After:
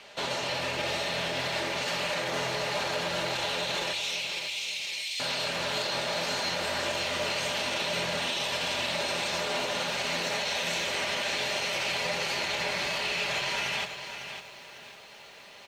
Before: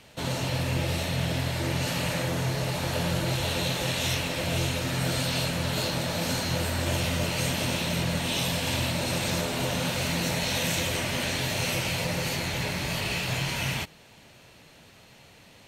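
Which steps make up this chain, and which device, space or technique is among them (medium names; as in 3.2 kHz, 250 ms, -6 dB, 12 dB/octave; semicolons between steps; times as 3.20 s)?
DJ mixer with the lows and highs turned down (three-band isolator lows -17 dB, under 390 Hz, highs -16 dB, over 6.7 kHz; peak limiter -27.5 dBFS, peak gain reduction 10.5 dB); comb 5 ms, depth 38%; 3.93–5.20 s: elliptic high-pass 2.2 kHz; bit-crushed delay 552 ms, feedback 35%, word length 10-bit, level -9 dB; trim +5 dB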